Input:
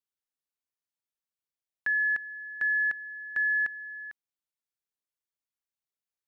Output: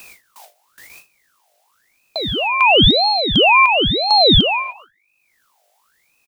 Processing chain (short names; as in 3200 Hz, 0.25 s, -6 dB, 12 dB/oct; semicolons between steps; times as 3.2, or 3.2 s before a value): whole clip reversed; EQ curve 550 Hz 0 dB, 950 Hz -19 dB, 1300 Hz +13 dB; upward compressor, threshold -17 dBFS; non-linear reverb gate 0.33 s flat, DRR 8 dB; hum 50 Hz, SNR 32 dB; low shelf 120 Hz +7 dB; on a send: feedback echo 0.141 s, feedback 29%, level -23 dB; on the sum: gate with hold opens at -30 dBFS; ring modulator with a swept carrier 1600 Hz, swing 60%, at 0.97 Hz; gain +3 dB